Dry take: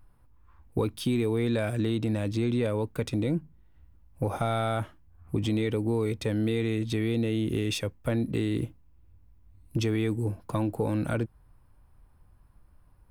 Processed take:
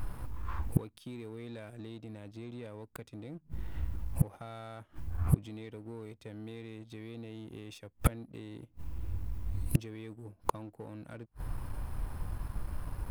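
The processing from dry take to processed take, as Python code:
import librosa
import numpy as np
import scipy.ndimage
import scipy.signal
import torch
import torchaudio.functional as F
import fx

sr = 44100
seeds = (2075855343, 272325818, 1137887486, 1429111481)

y = fx.gate_flip(x, sr, shuts_db=-30.0, range_db=-37)
y = fx.leveller(y, sr, passes=1)
y = y * librosa.db_to_amplitude(17.0)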